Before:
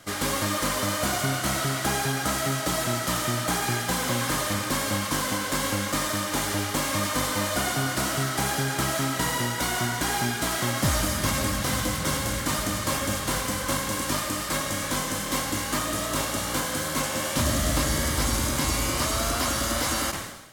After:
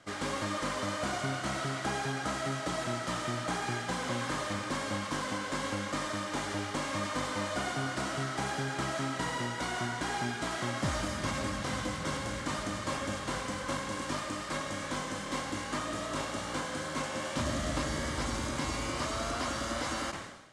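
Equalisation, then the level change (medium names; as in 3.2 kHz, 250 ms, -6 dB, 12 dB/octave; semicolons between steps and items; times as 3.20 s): low-pass 9.1 kHz 24 dB/octave; bass shelf 110 Hz -7 dB; treble shelf 4 kHz -8.5 dB; -5.5 dB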